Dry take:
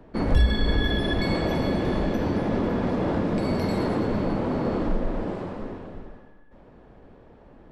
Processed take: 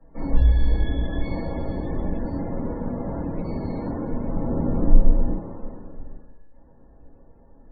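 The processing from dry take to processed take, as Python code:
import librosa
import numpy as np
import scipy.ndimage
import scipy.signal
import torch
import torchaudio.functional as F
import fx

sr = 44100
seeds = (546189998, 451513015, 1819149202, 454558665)

y = fx.low_shelf(x, sr, hz=350.0, db=8.5, at=(4.35, 5.31))
y = fx.room_shoebox(y, sr, seeds[0], volume_m3=260.0, walls='furnished', distance_m=5.9)
y = fx.spec_topn(y, sr, count=64)
y = fx.high_shelf(y, sr, hz=2800.0, db=-7.5)
y = y * librosa.db_to_amplitude(-16.5)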